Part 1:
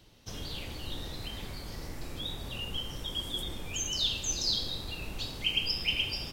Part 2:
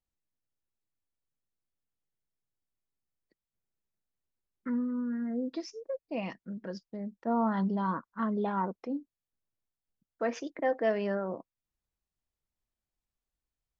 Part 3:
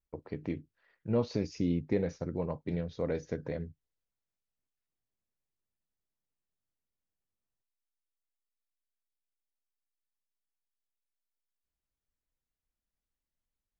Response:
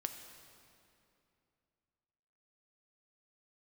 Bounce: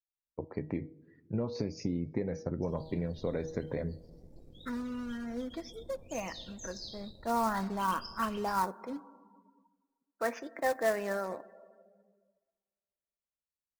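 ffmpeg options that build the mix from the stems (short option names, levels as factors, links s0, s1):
-filter_complex "[0:a]equalizer=f=1800:t=o:w=1.4:g=-9.5,aeval=exprs='sgn(val(0))*max(abs(val(0))-0.00355,0)':c=same,adelay=2350,volume=0.266[s0];[1:a]equalizer=f=1400:w=0.42:g=12,acrusher=bits=3:mode=log:mix=0:aa=0.000001,volume=0.266,asplit=2[s1][s2];[s2]volume=0.473[s3];[2:a]highpass=52,bandreject=f=159.3:t=h:w=4,bandreject=f=318.6:t=h:w=4,bandreject=f=477.9:t=h:w=4,bandreject=f=637.2:t=h:w=4,bandreject=f=796.5:t=h:w=4,bandreject=f=955.8:t=h:w=4,bandreject=f=1115.1:t=h:w=4,bandreject=f=1274.4:t=h:w=4,bandreject=f=1433.7:t=h:w=4,bandreject=f=1593:t=h:w=4,bandreject=f=1752.3:t=h:w=4,bandreject=f=1911.6:t=h:w=4,bandreject=f=2070.9:t=h:w=4,bandreject=f=2230.2:t=h:w=4,bandreject=f=2389.5:t=h:w=4,bandreject=f=2548.8:t=h:w=4,bandreject=f=2708.1:t=h:w=4,bandreject=f=2867.4:t=h:w=4,bandreject=f=3026.7:t=h:w=4,bandreject=f=3186:t=h:w=4,bandreject=f=3345.3:t=h:w=4,bandreject=f=3504.6:t=h:w=4,bandreject=f=3663.9:t=h:w=4,bandreject=f=3823.2:t=h:w=4,bandreject=f=3982.5:t=h:w=4,bandreject=f=4141.8:t=h:w=4,bandreject=f=4301.1:t=h:w=4,bandreject=f=4460.4:t=h:w=4,bandreject=f=4619.7:t=h:w=4,bandreject=f=4779:t=h:w=4,acompressor=threshold=0.0224:ratio=8,adelay=250,volume=1.26,asplit=2[s4][s5];[s5]volume=0.316[s6];[3:a]atrim=start_sample=2205[s7];[s3][s6]amix=inputs=2:normalize=0[s8];[s8][s7]afir=irnorm=-1:irlink=0[s9];[s0][s1][s4][s9]amix=inputs=4:normalize=0,equalizer=f=3000:w=2.9:g=-5.5,afftdn=nr=17:nf=-58"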